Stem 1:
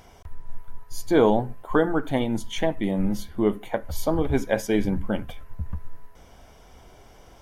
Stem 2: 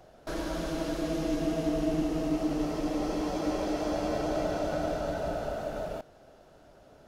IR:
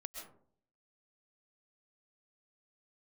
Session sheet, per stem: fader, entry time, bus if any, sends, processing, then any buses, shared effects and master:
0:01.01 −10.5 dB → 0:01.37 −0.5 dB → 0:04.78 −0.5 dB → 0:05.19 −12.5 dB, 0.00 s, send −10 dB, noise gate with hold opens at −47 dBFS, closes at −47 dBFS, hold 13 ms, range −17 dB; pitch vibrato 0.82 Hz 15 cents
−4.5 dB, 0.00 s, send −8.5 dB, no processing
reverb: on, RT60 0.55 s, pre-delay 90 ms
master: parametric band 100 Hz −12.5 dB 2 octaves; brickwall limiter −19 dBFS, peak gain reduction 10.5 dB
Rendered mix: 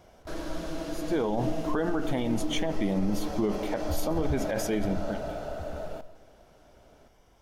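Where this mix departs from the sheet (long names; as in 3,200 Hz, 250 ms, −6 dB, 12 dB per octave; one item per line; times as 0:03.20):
stem 1: missing pitch vibrato 0.82 Hz 15 cents
master: missing parametric band 100 Hz −12.5 dB 2 octaves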